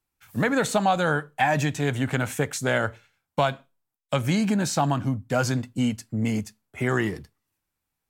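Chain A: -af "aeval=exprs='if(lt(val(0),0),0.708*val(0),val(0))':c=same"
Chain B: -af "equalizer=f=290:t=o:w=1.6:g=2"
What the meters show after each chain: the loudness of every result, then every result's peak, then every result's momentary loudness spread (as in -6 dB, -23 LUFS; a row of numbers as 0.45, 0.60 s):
-26.5, -24.5 LUFS; -9.5, -8.5 dBFS; 8, 8 LU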